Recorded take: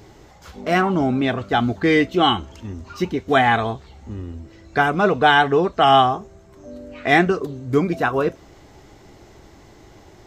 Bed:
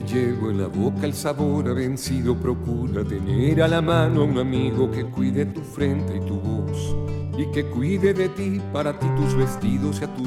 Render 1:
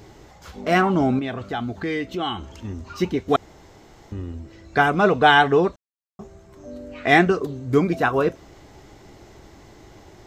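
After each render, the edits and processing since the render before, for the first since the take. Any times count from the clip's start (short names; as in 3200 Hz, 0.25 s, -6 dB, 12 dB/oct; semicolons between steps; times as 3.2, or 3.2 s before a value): 1.19–2.51 compressor 2:1, threshold -30 dBFS; 3.36–4.12 room tone; 5.76–6.19 mute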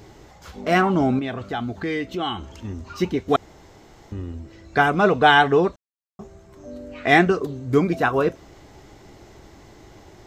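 nothing audible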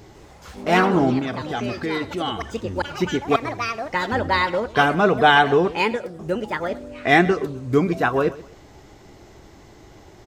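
feedback echo 0.129 s, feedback 28%, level -18.5 dB; echoes that change speed 0.152 s, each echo +4 st, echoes 3, each echo -6 dB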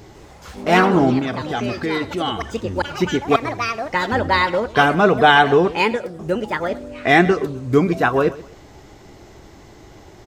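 gain +3 dB; limiter -1 dBFS, peak gain reduction 2 dB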